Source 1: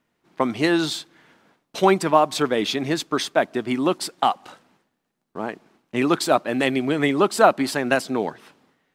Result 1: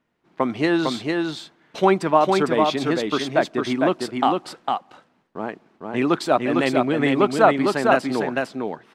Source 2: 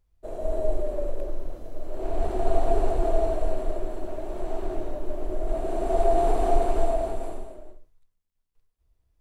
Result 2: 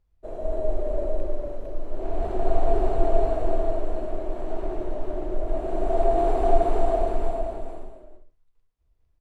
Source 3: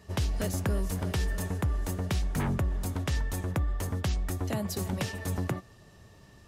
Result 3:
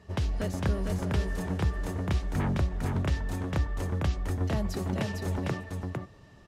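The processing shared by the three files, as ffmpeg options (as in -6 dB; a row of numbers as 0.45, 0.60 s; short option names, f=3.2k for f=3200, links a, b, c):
-af "aemphasis=mode=reproduction:type=50kf,aecho=1:1:454:0.668"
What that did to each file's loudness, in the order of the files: +0.5, +1.0, +0.5 LU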